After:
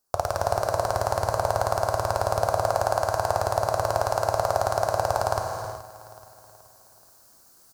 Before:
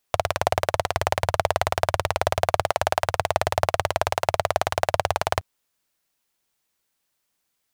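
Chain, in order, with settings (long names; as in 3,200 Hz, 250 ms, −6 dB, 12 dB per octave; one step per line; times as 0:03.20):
flat-topped bell 2,600 Hz −15 dB 1.2 octaves
reversed playback
upward compression, threshold −41 dBFS
reversed playback
brickwall limiter −9 dBFS, peak gain reduction 6 dB
repeating echo 427 ms, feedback 46%, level −17 dB
reverb whose tail is shaped and stops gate 420 ms flat, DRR 2 dB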